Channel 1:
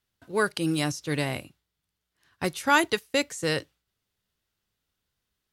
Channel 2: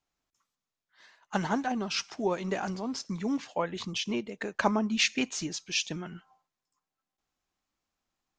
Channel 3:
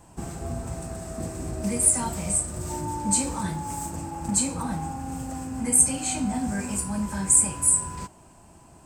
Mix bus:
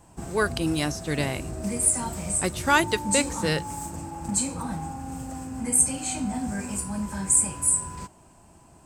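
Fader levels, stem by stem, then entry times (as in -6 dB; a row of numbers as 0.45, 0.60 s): +0.5 dB, off, -2.0 dB; 0.00 s, off, 0.00 s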